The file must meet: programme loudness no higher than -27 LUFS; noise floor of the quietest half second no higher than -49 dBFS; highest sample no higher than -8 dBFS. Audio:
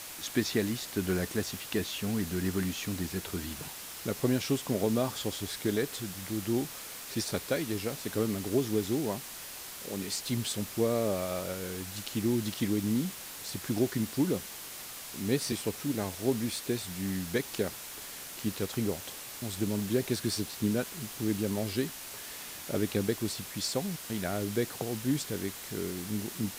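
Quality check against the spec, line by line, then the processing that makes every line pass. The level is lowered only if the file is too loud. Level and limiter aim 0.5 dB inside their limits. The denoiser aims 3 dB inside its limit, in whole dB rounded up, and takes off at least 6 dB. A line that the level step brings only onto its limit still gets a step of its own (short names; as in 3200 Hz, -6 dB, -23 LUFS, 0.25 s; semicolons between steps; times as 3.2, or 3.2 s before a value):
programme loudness -33.0 LUFS: OK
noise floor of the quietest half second -44 dBFS: fail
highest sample -13.5 dBFS: OK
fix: denoiser 8 dB, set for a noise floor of -44 dBFS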